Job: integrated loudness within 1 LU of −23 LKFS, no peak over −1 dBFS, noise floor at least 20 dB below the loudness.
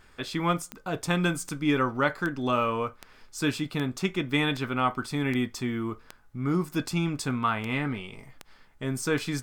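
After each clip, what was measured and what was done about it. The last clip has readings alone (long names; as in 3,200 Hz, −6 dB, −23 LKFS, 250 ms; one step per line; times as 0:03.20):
number of clicks 12; integrated loudness −28.5 LKFS; sample peak −10.5 dBFS; target loudness −23.0 LKFS
→ click removal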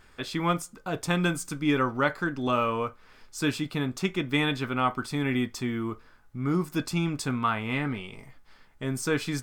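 number of clicks 0; integrated loudness −28.5 LKFS; sample peak −10.5 dBFS; target loudness −23.0 LKFS
→ level +5.5 dB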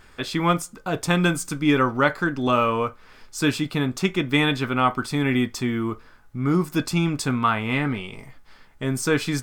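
integrated loudness −23.0 LKFS; sample peak −5.0 dBFS; background noise floor −51 dBFS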